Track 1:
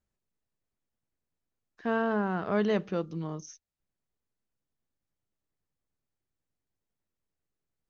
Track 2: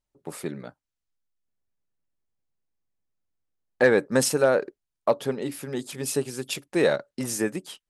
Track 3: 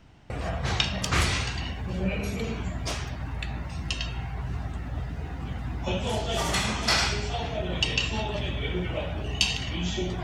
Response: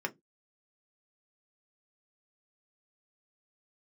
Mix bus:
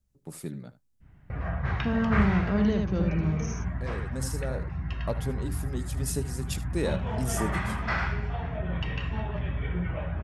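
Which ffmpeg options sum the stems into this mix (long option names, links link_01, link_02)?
-filter_complex "[0:a]alimiter=limit=-21dB:level=0:latency=1,volume=-4dB,asplit=3[link_01][link_02][link_03];[link_02]volume=-4dB[link_04];[1:a]volume=-11dB,asplit=2[link_05][link_06];[link_06]volume=-16dB[link_07];[2:a]adynamicequalizer=threshold=0.00631:dfrequency=980:dqfactor=0.74:tfrequency=980:tqfactor=0.74:attack=5:release=100:ratio=0.375:range=3:mode=boostabove:tftype=bell,lowpass=frequency=1800:width_type=q:width=2,adelay=1000,volume=-13.5dB,asplit=2[link_08][link_09];[link_09]volume=-11.5dB[link_10];[link_03]apad=whole_len=348042[link_11];[link_05][link_11]sidechaincompress=threshold=-56dB:ratio=4:attack=16:release=1210[link_12];[3:a]atrim=start_sample=2205[link_13];[link_10][link_13]afir=irnorm=-1:irlink=0[link_14];[link_04][link_07]amix=inputs=2:normalize=0,aecho=0:1:76:1[link_15];[link_01][link_12][link_08][link_14][link_15]amix=inputs=5:normalize=0,bass=frequency=250:gain=15,treble=frequency=4000:gain=8"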